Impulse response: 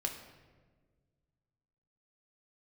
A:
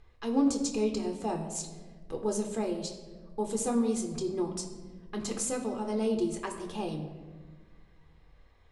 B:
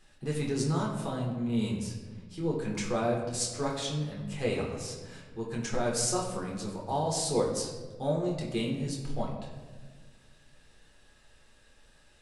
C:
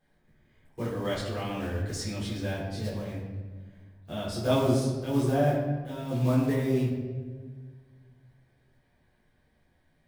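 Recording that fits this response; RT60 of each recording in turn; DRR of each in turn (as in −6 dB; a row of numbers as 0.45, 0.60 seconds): A; 1.5, 1.5, 1.5 seconds; 2.5, −3.0, −8.0 decibels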